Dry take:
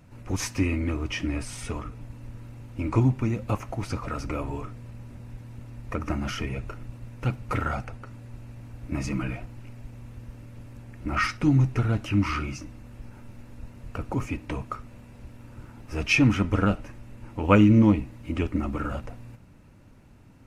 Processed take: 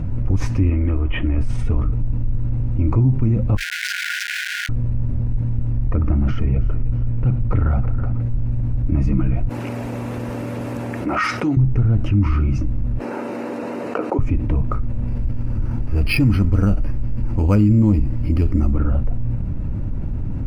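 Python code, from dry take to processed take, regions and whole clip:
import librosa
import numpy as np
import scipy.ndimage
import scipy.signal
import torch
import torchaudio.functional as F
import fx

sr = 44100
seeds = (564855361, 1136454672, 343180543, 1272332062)

y = fx.chain(x, sr, fx.ellip_lowpass(hz=3300.0, order=4, stop_db=40),
    fx.peak_eq(hz=140.0, db=-10.5, octaves=2.1), at=(0.7, 1.38))
y = fx.chain(y, sr, fx.schmitt(flips_db=-46.0),
    fx.brickwall_highpass(low_hz=1400.0), at=(3.57, 4.69))
y = fx.chain(y, sr, fx.air_absorb(metres=87.0),
    fx.echo_feedback(ms=323, feedback_pct=33, wet_db=-17), at=(5.87, 8.22))
y = fx.chain(y, sr, fx.highpass(hz=460.0, slope=12),
    fx.high_shelf(hz=7200.0, db=10.5), at=(9.49, 11.57))
y = fx.chain(y, sr, fx.highpass(hz=360.0, slope=24),
    fx.notch(hz=3400.0, q=10.0), at=(12.99, 14.19))
y = fx.chain(y, sr, fx.high_shelf(hz=2600.0, db=10.5),
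    fx.resample_bad(factor=6, down='filtered', up='hold'), at=(15.08, 18.73))
y = fx.tilt_eq(y, sr, slope=-4.5)
y = fx.env_flatten(y, sr, amount_pct=70)
y = y * 10.0 ** (-9.0 / 20.0)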